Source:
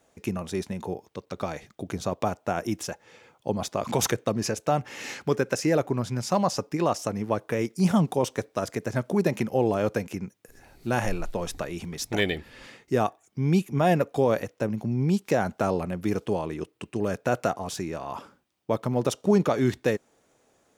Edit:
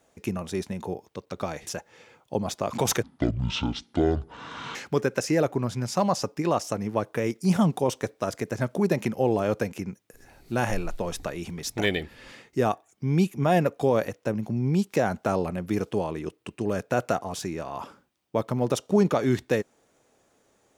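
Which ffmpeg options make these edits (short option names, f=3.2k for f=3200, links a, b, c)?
-filter_complex "[0:a]asplit=4[a][b][c][d];[a]atrim=end=1.672[e];[b]atrim=start=2.808:end=4.174[f];[c]atrim=start=4.17:end=5.1,asetpts=PTS-STARTPTS,asetrate=23814,aresample=44100[g];[d]atrim=start=5.096[h];[e][f]acrossfade=d=0.004:c1=hsin:c2=hsin[i];[i][g]acrossfade=d=0.004:c1=hsin:c2=hsin[j];[j][h]acrossfade=d=0.004:c1=hsin:c2=hsin"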